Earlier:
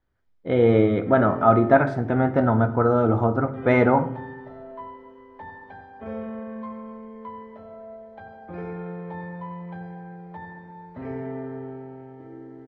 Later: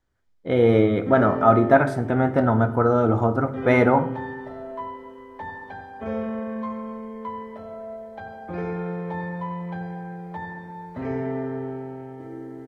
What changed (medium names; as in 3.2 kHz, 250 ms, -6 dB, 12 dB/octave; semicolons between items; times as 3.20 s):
background +4.5 dB; master: remove distance through air 140 m